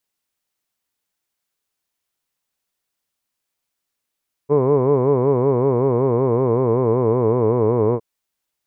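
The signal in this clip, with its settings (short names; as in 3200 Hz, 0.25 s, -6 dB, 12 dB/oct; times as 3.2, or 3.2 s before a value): formant-synthesis vowel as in hood, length 3.51 s, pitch 138 Hz, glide -3.5 st, vibrato depth 1.4 st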